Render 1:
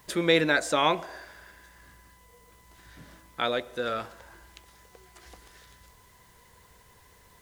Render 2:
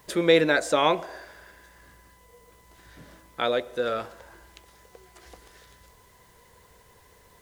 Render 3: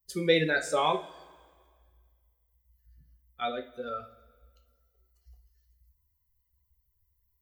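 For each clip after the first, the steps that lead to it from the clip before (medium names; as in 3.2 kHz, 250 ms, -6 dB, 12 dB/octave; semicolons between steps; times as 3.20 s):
peaking EQ 490 Hz +5 dB 1.1 oct
expander on every frequency bin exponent 2; two-slope reverb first 0.32 s, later 1.8 s, from -20 dB, DRR 3 dB; trim -3 dB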